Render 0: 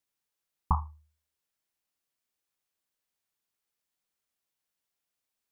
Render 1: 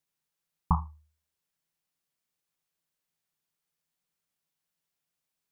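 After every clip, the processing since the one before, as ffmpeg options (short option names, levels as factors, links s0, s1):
-af "equalizer=f=160:w=4.7:g=12.5"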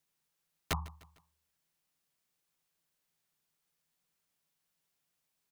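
-af "acompressor=threshold=0.0282:ratio=6,aeval=exprs='(mod(22.4*val(0)+1,2)-1)/22.4':c=same,aecho=1:1:151|302|453:0.0944|0.0444|0.0209,volume=1.41"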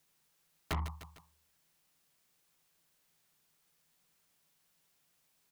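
-af "asoftclip=type=tanh:threshold=0.0112,volume=2.51"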